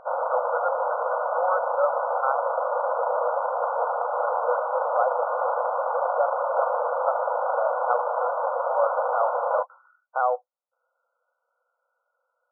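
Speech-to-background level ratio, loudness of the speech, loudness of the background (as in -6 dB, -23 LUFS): -4.0 dB, -30.0 LUFS, -26.0 LUFS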